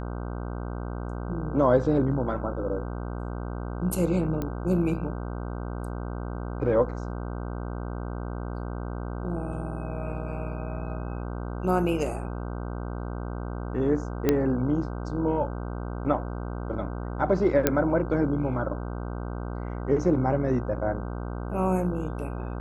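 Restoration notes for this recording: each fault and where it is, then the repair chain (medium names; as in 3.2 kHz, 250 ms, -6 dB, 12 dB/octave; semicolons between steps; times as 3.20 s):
buzz 60 Hz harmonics 26 -33 dBFS
4.42 s: pop -18 dBFS
14.29 s: pop -9 dBFS
17.67 s: pop -5 dBFS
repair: de-click; de-hum 60 Hz, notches 26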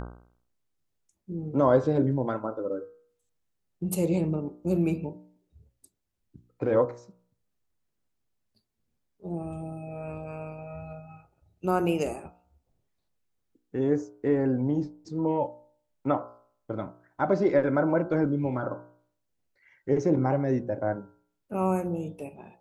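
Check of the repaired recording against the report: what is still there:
4.42 s: pop
14.29 s: pop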